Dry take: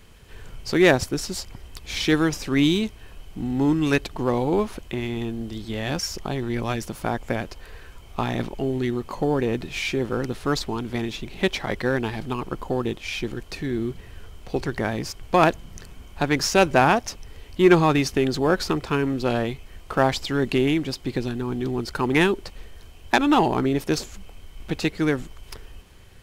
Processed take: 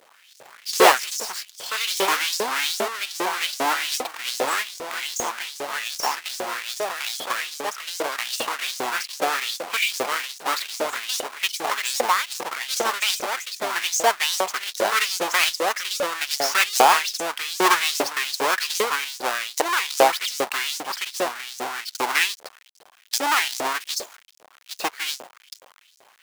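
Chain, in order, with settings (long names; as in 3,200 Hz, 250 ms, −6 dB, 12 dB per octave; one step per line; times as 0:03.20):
each half-wave held at its own peak
delay with pitch and tempo change per echo 122 ms, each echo +3 semitones, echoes 2
auto-filter high-pass saw up 2.5 Hz 500–6,900 Hz
level −3.5 dB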